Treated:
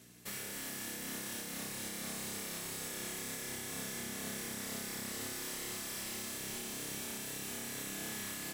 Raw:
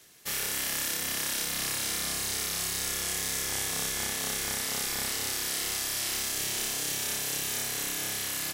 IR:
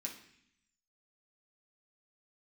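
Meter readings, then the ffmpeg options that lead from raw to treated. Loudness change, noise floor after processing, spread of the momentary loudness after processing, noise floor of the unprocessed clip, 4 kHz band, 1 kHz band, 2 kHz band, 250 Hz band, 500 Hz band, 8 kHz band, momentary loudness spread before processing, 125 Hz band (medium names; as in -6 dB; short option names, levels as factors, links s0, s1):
-10.5 dB, -43 dBFS, 1 LU, -33 dBFS, -12.0 dB, -9.0 dB, -9.5 dB, -1.5 dB, -5.5 dB, -11.0 dB, 1 LU, -5.5 dB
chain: -filter_complex "[0:a]aeval=exprs='val(0)+0.00158*(sin(2*PI*60*n/s)+sin(2*PI*2*60*n/s)/2+sin(2*PI*3*60*n/s)/3+sin(2*PI*4*60*n/s)/4+sin(2*PI*5*60*n/s)/5)':c=same,highpass=f=100:w=0.5412,highpass=f=100:w=1.3066,asplit=2[s0][s1];[1:a]atrim=start_sample=2205[s2];[s1][s2]afir=irnorm=-1:irlink=0,volume=0.531[s3];[s0][s3]amix=inputs=2:normalize=0,alimiter=limit=0.141:level=0:latency=1:release=405,equalizer=f=960:t=o:w=3:g=-6.5,volume=42.2,asoftclip=hard,volume=0.0237,highshelf=f=2000:g=-11.5,volume=1.58"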